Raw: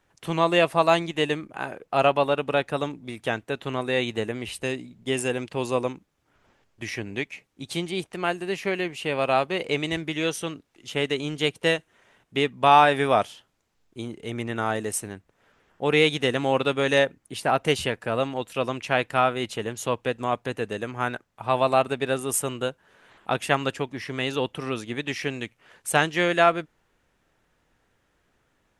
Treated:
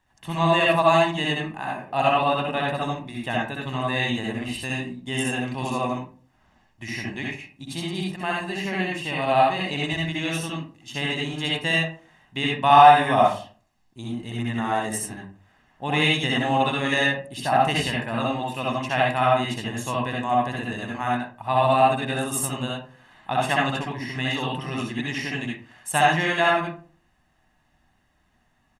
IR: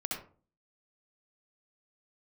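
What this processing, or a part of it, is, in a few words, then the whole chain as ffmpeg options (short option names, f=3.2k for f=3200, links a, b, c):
microphone above a desk: -filter_complex "[0:a]aecho=1:1:1.1:0.65[a];[1:a]atrim=start_sample=2205[b];[a][b]afir=irnorm=-1:irlink=0,volume=-2dB"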